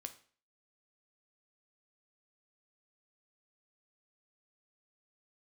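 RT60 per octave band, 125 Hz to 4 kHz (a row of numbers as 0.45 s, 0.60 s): 0.45 s, 0.45 s, 0.45 s, 0.45 s, 0.45 s, 0.40 s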